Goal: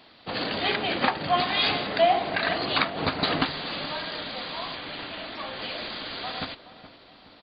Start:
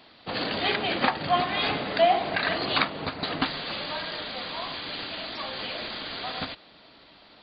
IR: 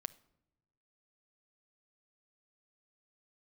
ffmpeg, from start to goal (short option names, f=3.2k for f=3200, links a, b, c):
-filter_complex "[0:a]asettb=1/sr,asplit=3[a][b][c];[a]atrim=end=1.384[d];[b]atrim=start=1.38:end=1.87,asetpts=PTS-STARTPTS,afade=t=in:d=0.004:c=qsin,afade=t=out:st=0.486:d=0.004:c=qsin,aemphasis=mode=production:type=75fm[e];[c]atrim=start=1.866[f];[d][e]acrossfade=d=0.004:c1=hsin:c2=qsin[g];[g][f]acrossfade=d=0.004:c1=qsin:c2=hsin,asplit=3[h][i][j];[h]afade=t=out:st=2.96:d=0.02[k];[i]acontrast=33,afade=t=in:st=2.96:d=0.02,afade=t=out:st=3.41:d=0.02[l];[j]afade=t=in:st=3.41:d=0.02[m];[k][l][m]amix=inputs=3:normalize=0,asettb=1/sr,asplit=3[n][o][p];[n]atrim=end=4.754[q];[o]atrim=start=4.75:end=5.62,asetpts=PTS-STARTPTS,afade=t=in:d=0.004:c=qsin,afade=t=out:st=0.866:d=0.004:c=qsin,lowpass=3.5k[r];[p]atrim=start=5.616[s];[q][r]acrossfade=d=0.004:c1=hsin:c2=qsin[t];[t][s]acrossfade=d=0.004:c1=qsin:c2=hsin,asplit=2[u][v];[v]adelay=422,lowpass=f=1.4k:p=1,volume=-14dB,asplit=2[w][x];[x]adelay=422,lowpass=f=1.4k:p=1,volume=0.51,asplit=2[y][z];[z]adelay=422,lowpass=f=1.4k:p=1,volume=0.51,asplit=2[aa][ab];[ab]adelay=422,lowpass=f=1.4k:p=1,volume=0.51,asplit=2[ac][ad];[ad]adelay=422,lowpass=f=1.4k:p=1,volume=0.51[ae];[u][w][y][aa][ac][ae]amix=inputs=6:normalize=0"